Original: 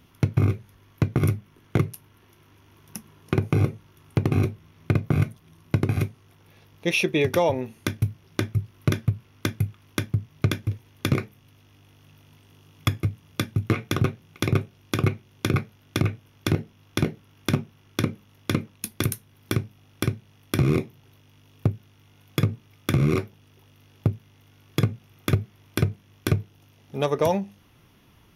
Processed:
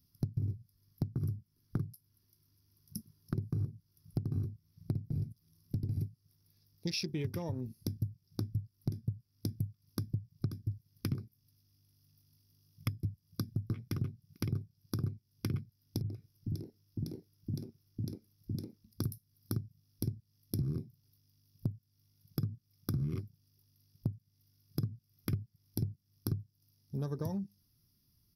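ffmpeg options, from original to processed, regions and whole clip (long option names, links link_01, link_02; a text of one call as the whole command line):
ffmpeg -i in.wav -filter_complex "[0:a]asettb=1/sr,asplit=3[link_01][link_02][link_03];[link_01]atrim=end=5.044[link_04];[link_02]atrim=start=5.04:end=5.99,asetpts=PTS-STARTPTS,afade=type=in:duration=0.004:curve=qsin,afade=type=out:start_time=0.946:duration=0.004:curve=qsin,asoftclip=type=hard:threshold=-20dB,acompressor=mode=upward:threshold=-47dB:ratio=2.5:attack=3.2:release=140:knee=2.83:detection=peak[link_05];[link_03]atrim=start=5.986[link_06];[link_04][link_05]acrossfade=duration=0.004:curve1=hsin:curve2=qsin[link_07];[link_07][link_06]acrossfade=duration=0.004:curve1=qsin:curve2=hsin,asettb=1/sr,asplit=3[link_08][link_09][link_10];[link_08]atrim=end=16.014[link_11];[link_09]atrim=start=16.01:end=18.93,asetpts=PTS-STARTPTS,afade=type=in:duration=0.004:curve=qsin,afade=type=out:start_time=2.916:duration=0.004:curve=qsin,equalizer=frequency=350:width_type=o:width=0.92:gain=5.5,acompressor=threshold=-29dB:ratio=2:attack=3.2:release=140:knee=1:detection=peak,acrossover=split=290[link_12][link_13];[link_13]adelay=90[link_14];[link_12][link_14]amix=inputs=2:normalize=0,atrim=end_sample=128772[link_15];[link_10]atrim=start=18.926[link_16];[link_11][link_15]acrossfade=duration=0.004:curve1=hsin:curve2=qsin[link_17];[link_17][link_16]acrossfade=duration=0.004:curve1=qsin:curve2=hsin,afwtdn=0.0251,firequalizer=gain_entry='entry(120,0);entry(570,-20);entry(1200,-16);entry(1800,-15);entry(3000,-15);entry(5000,14);entry(7200,-13);entry(11000,10)':delay=0.05:min_phase=1,acompressor=threshold=-36dB:ratio=4,volume=2dB" out.wav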